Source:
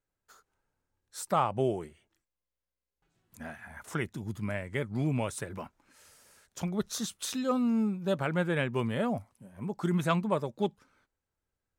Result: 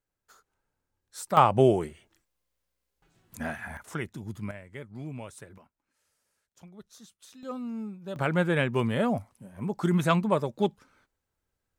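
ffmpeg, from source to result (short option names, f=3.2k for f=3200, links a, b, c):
-af "asetnsamples=n=441:p=0,asendcmd='1.37 volume volume 8.5dB;3.77 volume volume -1dB;4.51 volume volume -9dB;5.58 volume volume -17dB;7.43 volume volume -8dB;8.16 volume volume 4dB',volume=0dB"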